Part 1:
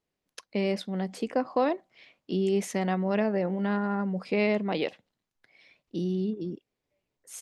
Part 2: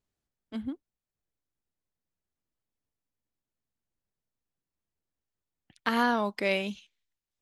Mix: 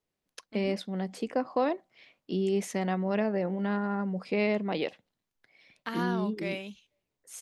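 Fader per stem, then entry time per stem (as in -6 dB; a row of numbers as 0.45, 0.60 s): -2.0, -8.0 dB; 0.00, 0.00 s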